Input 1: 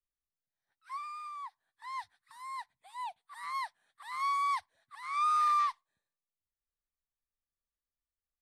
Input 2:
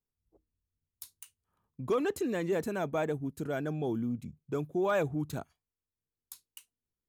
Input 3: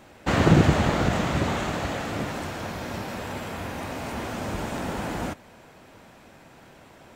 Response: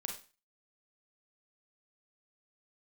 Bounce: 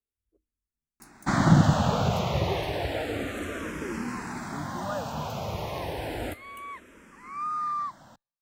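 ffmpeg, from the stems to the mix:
-filter_complex "[0:a]lowpass=frequency=2300:poles=1,adelay=2200,volume=-1.5dB[link_01];[1:a]volume=-2.5dB[link_02];[2:a]adelay=1000,volume=0.5dB[link_03];[link_01][link_02][link_03]amix=inputs=3:normalize=0,asplit=2[link_04][link_05];[link_05]afreqshift=-0.31[link_06];[link_04][link_06]amix=inputs=2:normalize=1"

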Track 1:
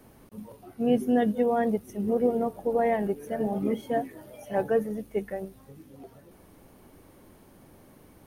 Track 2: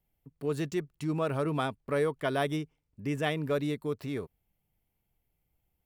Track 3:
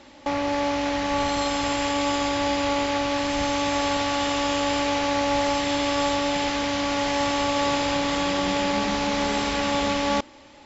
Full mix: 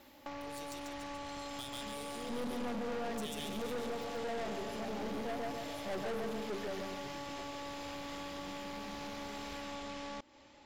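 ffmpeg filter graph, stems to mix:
ffmpeg -i stem1.wav -i stem2.wav -i stem3.wav -filter_complex "[0:a]bandreject=frequency=50:width_type=h:width=6,bandreject=frequency=100:width_type=h:width=6,bandreject=frequency=150:width_type=h:width=6,bandreject=frequency=200:width_type=h:width=6,bandreject=frequency=250:width_type=h:width=6,bandreject=frequency=300:width_type=h:width=6,bandreject=frequency=350:width_type=h:width=6,bandreject=frequency=400:width_type=h:width=6,bandreject=frequency=450:width_type=h:width=6,adelay=1350,volume=-2dB,asplit=2[link_01][link_02];[link_02]volume=-5dB[link_03];[1:a]aexciter=amount=8.5:drive=8.7:freq=2700,aeval=exprs='val(0)*pow(10,-24*if(lt(mod(0.63*n/s,1),2*abs(0.63)/1000),1-mod(0.63*n/s,1)/(2*abs(0.63)/1000),(mod(0.63*n/s,1)-2*abs(0.63)/1000)/(1-2*abs(0.63)/1000))/20)':channel_layout=same,volume=-8.5dB,asplit=3[link_04][link_05][link_06];[link_05]volume=-10.5dB[link_07];[2:a]volume=-9dB[link_08];[link_06]apad=whole_len=424125[link_09];[link_01][link_09]sidechaincompress=threshold=-49dB:ratio=8:attack=16:release=1440[link_10];[link_04][link_08]amix=inputs=2:normalize=0,acompressor=threshold=-38dB:ratio=6,volume=0dB[link_11];[link_03][link_07]amix=inputs=2:normalize=0,aecho=0:1:140|280|420|560|700:1|0.38|0.144|0.0549|0.0209[link_12];[link_10][link_11][link_12]amix=inputs=3:normalize=0,aeval=exprs='(tanh(63.1*val(0)+0.45)-tanh(0.45))/63.1':channel_layout=same" out.wav

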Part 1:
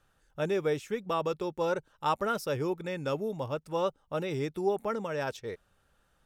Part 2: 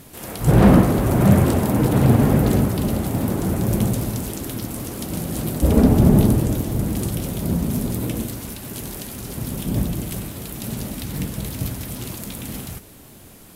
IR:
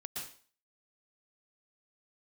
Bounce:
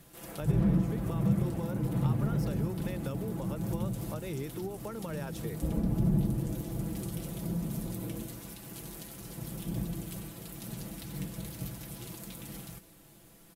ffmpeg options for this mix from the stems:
-filter_complex "[0:a]acompressor=threshold=-31dB:ratio=6,volume=1dB[link_01];[1:a]aecho=1:1:6:0.65,volume=-13.5dB[link_02];[link_01][link_02]amix=inputs=2:normalize=0,acrossover=split=240[link_03][link_04];[link_04]acompressor=threshold=-38dB:ratio=10[link_05];[link_03][link_05]amix=inputs=2:normalize=0"

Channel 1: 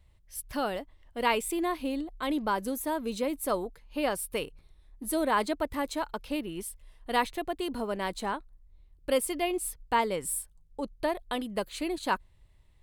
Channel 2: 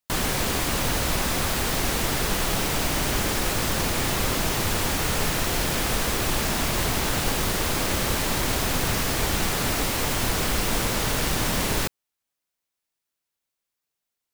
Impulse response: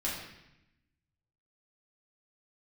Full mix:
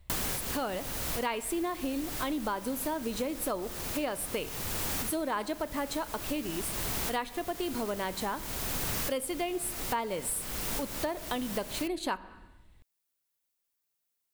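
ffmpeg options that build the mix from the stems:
-filter_complex "[0:a]volume=2.5dB,asplit=3[link_01][link_02][link_03];[link_02]volume=-18.5dB[link_04];[1:a]highshelf=frequency=8400:gain=9.5,volume=-4dB[link_05];[link_03]apad=whole_len=632345[link_06];[link_05][link_06]sidechaincompress=threshold=-41dB:ratio=8:attack=49:release=558[link_07];[2:a]atrim=start_sample=2205[link_08];[link_04][link_08]afir=irnorm=-1:irlink=0[link_09];[link_01][link_07][link_09]amix=inputs=3:normalize=0,acompressor=threshold=-30dB:ratio=4"

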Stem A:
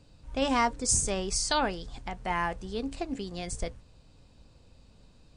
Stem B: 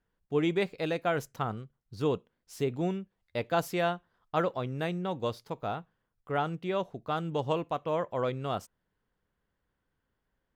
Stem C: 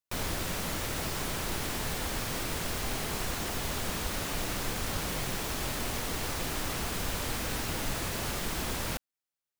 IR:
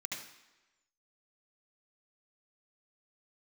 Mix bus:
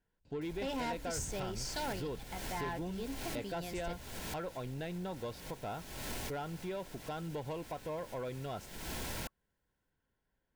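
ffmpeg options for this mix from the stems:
-filter_complex "[0:a]lowpass=5900,adelay=250,volume=-6.5dB[link_01];[1:a]acompressor=threshold=-32dB:ratio=4,volume=-2.5dB,asplit=2[link_02][link_03];[2:a]alimiter=limit=-24dB:level=0:latency=1:release=210,adelay=300,volume=-3.5dB[link_04];[link_03]apad=whole_len=436536[link_05];[link_04][link_05]sidechaincompress=threshold=-51dB:ratio=8:attack=6.2:release=287[link_06];[link_01][link_02][link_06]amix=inputs=3:normalize=0,asoftclip=type=tanh:threshold=-32.5dB,asuperstop=centerf=1200:order=12:qfactor=6.7"

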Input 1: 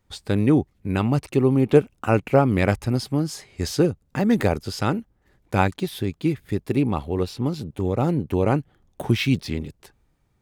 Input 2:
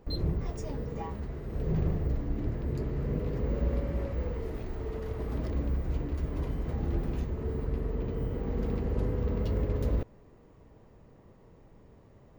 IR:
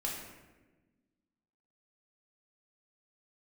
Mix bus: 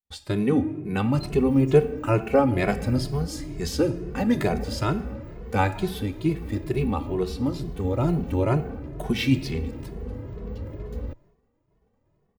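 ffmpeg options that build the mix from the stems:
-filter_complex "[0:a]volume=-1.5dB,asplit=2[link_01][link_02];[link_02]volume=-9.5dB[link_03];[1:a]adelay=1100,volume=-2dB[link_04];[2:a]atrim=start_sample=2205[link_05];[link_03][link_05]afir=irnorm=-1:irlink=0[link_06];[link_01][link_04][link_06]amix=inputs=3:normalize=0,agate=range=-33dB:threshold=-50dB:ratio=3:detection=peak,asplit=2[link_07][link_08];[link_08]adelay=2.3,afreqshift=2.2[link_09];[link_07][link_09]amix=inputs=2:normalize=1"

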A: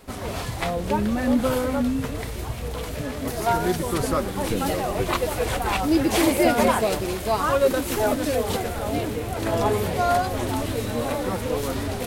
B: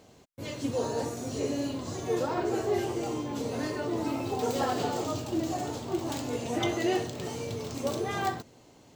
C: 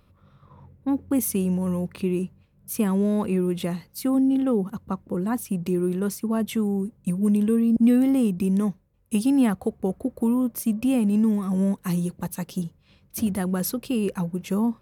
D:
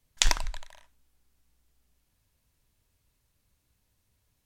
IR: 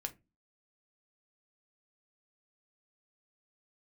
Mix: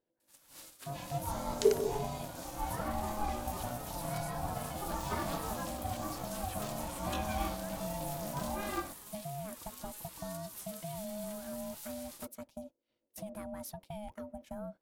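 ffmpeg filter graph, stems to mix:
-filter_complex "[0:a]acrossover=split=1400|3300[link_01][link_02][link_03];[link_01]acompressor=threshold=-23dB:ratio=4[link_04];[link_02]acompressor=threshold=-47dB:ratio=4[link_05];[link_03]acompressor=threshold=-39dB:ratio=4[link_06];[link_04][link_05][link_06]amix=inputs=3:normalize=0,aderivative,adelay=200,volume=-5.5dB[link_07];[1:a]flanger=delay=19.5:depth=7.3:speed=1.2,adelay=500,volume=-2dB[link_08];[2:a]acompressor=threshold=-25dB:ratio=6,volume=-12dB[link_09];[3:a]bass=frequency=250:gain=12,treble=frequency=4000:gain=3,adelay=1400,volume=-13.5dB[link_10];[link_07][link_08][link_09][link_10]amix=inputs=4:normalize=0,agate=range=-12dB:threshold=-47dB:ratio=16:detection=peak,aeval=exprs='val(0)*sin(2*PI*420*n/s)':channel_layout=same"

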